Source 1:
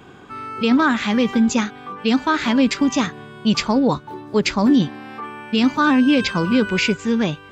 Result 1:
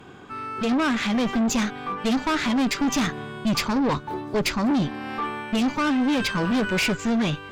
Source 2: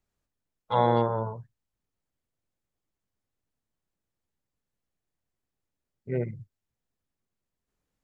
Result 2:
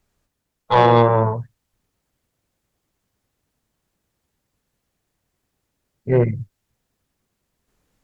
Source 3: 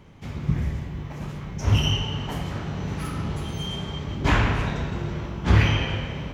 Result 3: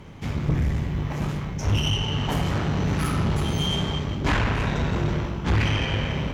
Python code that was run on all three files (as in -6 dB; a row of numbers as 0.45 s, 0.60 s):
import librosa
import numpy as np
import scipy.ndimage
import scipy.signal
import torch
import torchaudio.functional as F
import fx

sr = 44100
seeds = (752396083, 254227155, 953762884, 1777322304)

y = fx.rider(x, sr, range_db=4, speed_s=0.5)
y = fx.tube_stage(y, sr, drive_db=21.0, bias=0.45)
y = y * 10.0 ** (-24 / 20.0) / np.sqrt(np.mean(np.square(y)))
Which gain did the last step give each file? +2.0 dB, +17.5 dB, +5.0 dB